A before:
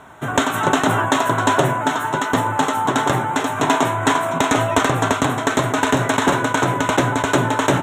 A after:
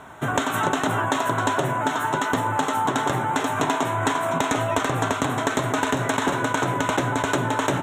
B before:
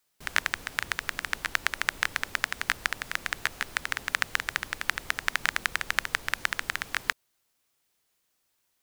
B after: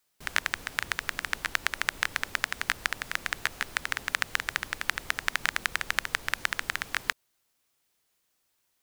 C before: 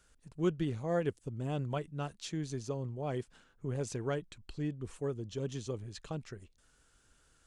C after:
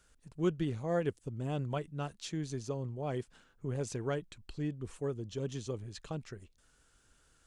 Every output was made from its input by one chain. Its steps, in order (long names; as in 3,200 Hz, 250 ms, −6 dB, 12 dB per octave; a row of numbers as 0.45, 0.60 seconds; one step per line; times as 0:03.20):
downward compressor, threshold −19 dBFS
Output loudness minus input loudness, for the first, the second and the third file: −5.0, −0.5, 0.0 LU